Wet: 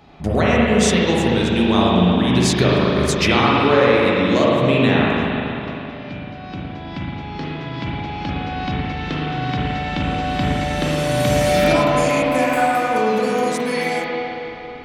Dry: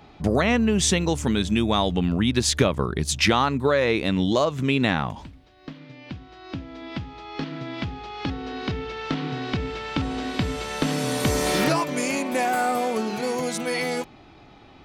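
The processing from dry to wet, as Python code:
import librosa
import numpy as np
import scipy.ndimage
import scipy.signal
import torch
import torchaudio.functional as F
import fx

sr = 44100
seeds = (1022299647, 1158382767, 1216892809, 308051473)

y = fx.rev_spring(x, sr, rt60_s=3.2, pass_ms=(39, 55), chirp_ms=80, drr_db=-5.5)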